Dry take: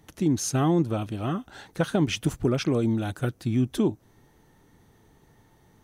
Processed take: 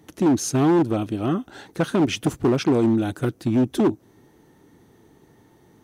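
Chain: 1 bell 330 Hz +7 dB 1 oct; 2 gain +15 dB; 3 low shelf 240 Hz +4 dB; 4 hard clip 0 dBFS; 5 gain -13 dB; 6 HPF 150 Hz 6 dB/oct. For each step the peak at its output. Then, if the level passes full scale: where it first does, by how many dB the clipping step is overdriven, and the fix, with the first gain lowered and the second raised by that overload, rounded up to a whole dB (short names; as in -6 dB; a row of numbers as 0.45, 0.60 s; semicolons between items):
-8.0, +7.0, +8.5, 0.0, -13.0, -9.5 dBFS; step 2, 8.5 dB; step 2 +6 dB, step 5 -4 dB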